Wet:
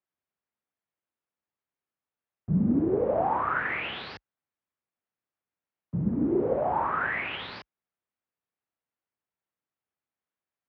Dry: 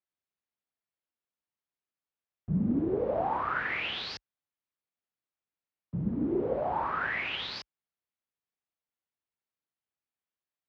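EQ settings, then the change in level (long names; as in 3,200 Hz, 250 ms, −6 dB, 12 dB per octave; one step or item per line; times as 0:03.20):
high-pass filter 61 Hz
low-pass filter 2,200 Hz 12 dB per octave
+4.0 dB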